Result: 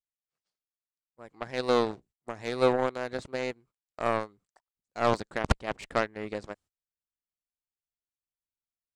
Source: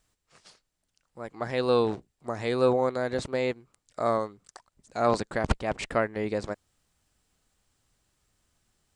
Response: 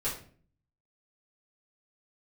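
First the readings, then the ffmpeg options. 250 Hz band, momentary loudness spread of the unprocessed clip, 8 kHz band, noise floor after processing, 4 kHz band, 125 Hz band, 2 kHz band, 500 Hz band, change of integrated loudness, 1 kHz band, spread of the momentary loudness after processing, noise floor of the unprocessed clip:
−3.0 dB, 15 LU, −2.5 dB, below −85 dBFS, 0.0 dB, −3.0 dB, 0.0 dB, −3.0 dB, −2.0 dB, −1.0 dB, 18 LU, −80 dBFS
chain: -af "aeval=exprs='0.355*(cos(1*acos(clip(val(0)/0.355,-1,1)))-cos(1*PI/2))+0.0355*(cos(7*acos(clip(val(0)/0.355,-1,1)))-cos(7*PI/2))':channel_layout=same,agate=range=-24dB:threshold=-56dB:ratio=16:detection=peak"

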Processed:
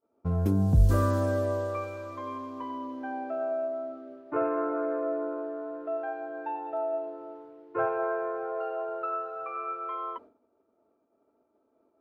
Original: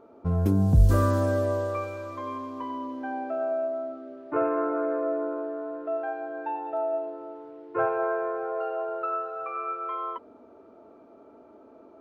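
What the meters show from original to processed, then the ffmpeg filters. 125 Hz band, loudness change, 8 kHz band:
−2.5 dB, −2.5 dB, can't be measured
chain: -af "agate=range=-33dB:threshold=-40dB:ratio=3:detection=peak,volume=-2.5dB"

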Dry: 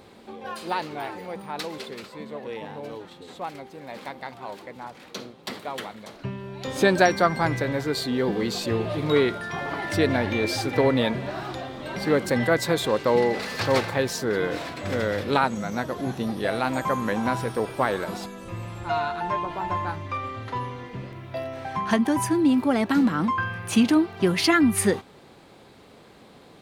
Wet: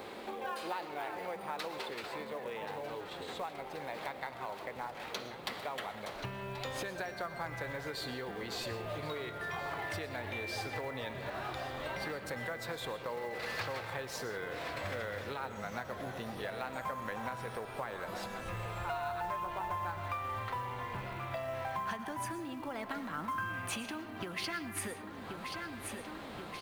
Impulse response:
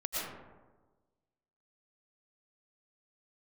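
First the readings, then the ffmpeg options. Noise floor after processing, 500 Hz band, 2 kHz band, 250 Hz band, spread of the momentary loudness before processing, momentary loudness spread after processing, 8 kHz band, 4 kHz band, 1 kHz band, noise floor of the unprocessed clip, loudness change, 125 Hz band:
−46 dBFS, −15.0 dB, −10.5 dB, −20.5 dB, 17 LU, 4 LU, −12.5 dB, −11.0 dB, −10.5 dB, −50 dBFS, −15.0 dB, −14.0 dB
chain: -filter_complex "[0:a]alimiter=limit=-15dB:level=0:latency=1:release=491,bass=frequency=250:gain=-11,treble=frequency=4000:gain=-15,aecho=1:1:1080|2160|3240|4320|5400:0.141|0.0763|0.0412|0.0222|0.012,crystalizer=i=2:c=0,acompressor=threshold=-44dB:ratio=4,asplit=2[link_01][link_02];[1:a]atrim=start_sample=2205[link_03];[link_02][link_03]afir=irnorm=-1:irlink=0,volume=-12dB[link_04];[link_01][link_04]amix=inputs=2:normalize=0,asubboost=boost=6:cutoff=110,acrossover=split=470|3000[link_05][link_06][link_07];[link_05]acompressor=threshold=-53dB:ratio=1.5[link_08];[link_08][link_06][link_07]amix=inputs=3:normalize=0,acrusher=bits=6:mode=log:mix=0:aa=0.000001,volume=4.5dB"

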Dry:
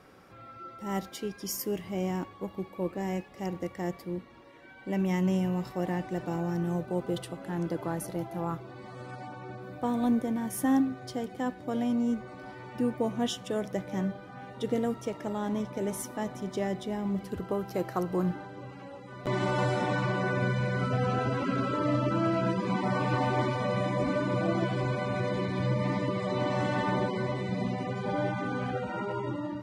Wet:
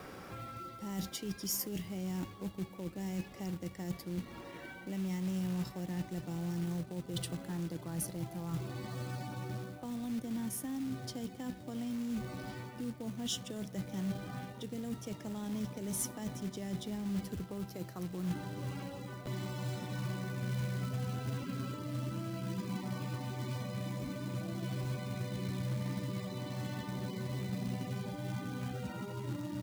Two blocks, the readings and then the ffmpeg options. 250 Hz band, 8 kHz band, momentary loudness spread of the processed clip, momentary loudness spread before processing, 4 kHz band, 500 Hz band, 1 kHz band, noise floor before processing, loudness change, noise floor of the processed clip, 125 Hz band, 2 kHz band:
−7.5 dB, +0.5 dB, 5 LU, 11 LU, −3.5 dB, −13.5 dB, −14.0 dB, −50 dBFS, −8.5 dB, −50 dBFS, −5.0 dB, −12.0 dB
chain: -filter_complex "[0:a]areverse,acompressor=threshold=-39dB:ratio=12,areverse,asplit=2[link_01][link_02];[link_02]adelay=653,lowpass=frequency=2000:poles=1,volume=-22.5dB,asplit=2[link_03][link_04];[link_04]adelay=653,lowpass=frequency=2000:poles=1,volume=0.47,asplit=2[link_05][link_06];[link_06]adelay=653,lowpass=frequency=2000:poles=1,volume=0.47[link_07];[link_01][link_03][link_05][link_07]amix=inputs=4:normalize=0,acrossover=split=230|3000[link_08][link_09][link_10];[link_09]acompressor=threshold=-54dB:ratio=8[link_11];[link_08][link_11][link_10]amix=inputs=3:normalize=0,acrusher=bits=4:mode=log:mix=0:aa=0.000001,volume=8dB"

